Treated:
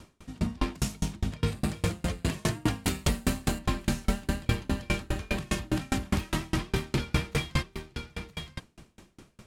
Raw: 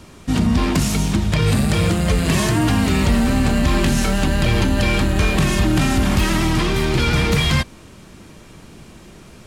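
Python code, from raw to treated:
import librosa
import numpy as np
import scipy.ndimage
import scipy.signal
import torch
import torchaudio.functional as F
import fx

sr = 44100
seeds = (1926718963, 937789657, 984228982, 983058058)

y = fx.high_shelf(x, sr, hz=5800.0, db=11.5, at=(2.84, 3.59))
y = y + 10.0 ** (-9.0 / 20.0) * np.pad(y, (int(967 * sr / 1000.0), 0))[:len(y)]
y = fx.tremolo_decay(y, sr, direction='decaying', hz=4.9, depth_db=34)
y = y * librosa.db_to_amplitude(-4.5)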